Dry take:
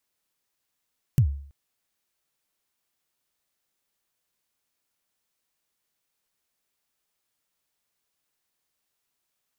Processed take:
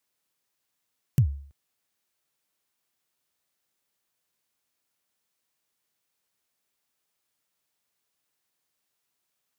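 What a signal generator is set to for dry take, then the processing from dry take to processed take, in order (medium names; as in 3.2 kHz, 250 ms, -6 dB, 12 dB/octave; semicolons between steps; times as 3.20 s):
kick drum length 0.33 s, from 150 Hz, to 70 Hz, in 85 ms, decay 0.54 s, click on, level -12 dB
high-pass 67 Hz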